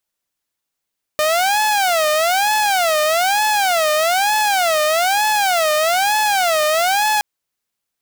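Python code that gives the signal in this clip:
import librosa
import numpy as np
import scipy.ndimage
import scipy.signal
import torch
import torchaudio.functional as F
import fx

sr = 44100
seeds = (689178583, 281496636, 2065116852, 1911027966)

y = fx.siren(sr, length_s=6.02, kind='wail', low_hz=608.0, high_hz=858.0, per_s=1.1, wave='saw', level_db=-11.5)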